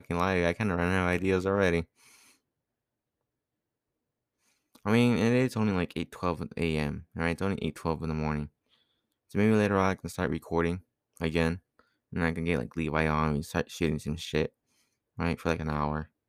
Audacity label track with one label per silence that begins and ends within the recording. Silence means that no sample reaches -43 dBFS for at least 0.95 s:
1.840000	4.750000	silence